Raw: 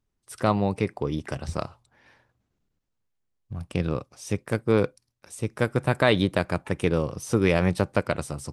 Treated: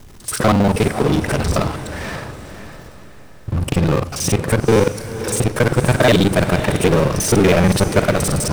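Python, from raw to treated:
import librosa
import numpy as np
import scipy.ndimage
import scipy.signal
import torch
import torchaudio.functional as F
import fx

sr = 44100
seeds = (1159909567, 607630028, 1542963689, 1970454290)

y = fx.local_reverse(x, sr, ms=40.0)
y = fx.power_curve(y, sr, exponent=0.5)
y = fx.echo_diffused(y, sr, ms=546, feedback_pct=40, wet_db=-11)
y = y * 10.0 ** (2.5 / 20.0)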